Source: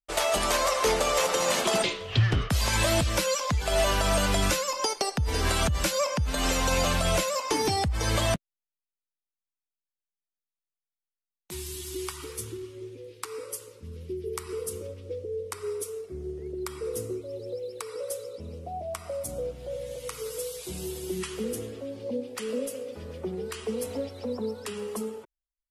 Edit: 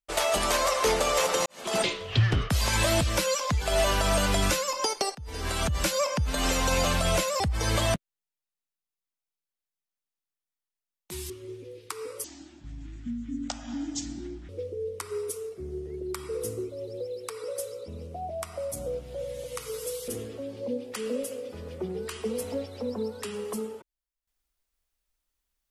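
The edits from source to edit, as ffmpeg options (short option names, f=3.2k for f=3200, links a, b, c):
-filter_complex "[0:a]asplit=8[a][b][c][d][e][f][g][h];[a]atrim=end=1.46,asetpts=PTS-STARTPTS,afade=t=out:st=1.456:d=0.004:c=hsin[i];[b]atrim=start=1.46:end=5.15,asetpts=PTS-STARTPTS,afade=t=in:d=0.33:c=qua,afade=t=out:st=3.686:d=0.004:c=hsin:silence=0.112202[j];[c]atrim=start=5.15:end=7.402,asetpts=PTS-STARTPTS,afade=t=in:d=0.68:silence=0.112202[k];[d]atrim=start=7.798:end=11.702[l];[e]atrim=start=12.628:end=13.574[m];[f]atrim=start=13.57:end=15.01,asetpts=PTS-STARTPTS,asetrate=28224,aresample=44100[n];[g]atrim=start=15.006:end=20.602[o];[h]atrim=start=21.508[p];[i][j][k]concat=n=3:v=0:a=1[q];[q][l]acrossfade=d=0.004:c1=hsin:c2=hsin[r];[r][m]acrossfade=d=0.004:c1=hsin:c2=hsin[s];[s][n]acrossfade=d=0.004:c1=hsin:c2=hsin[t];[t][o]acrossfade=d=0.004:c1=hsin:c2=hsin[u];[u][p]acrossfade=d=0.004:c1=hsin:c2=hsin"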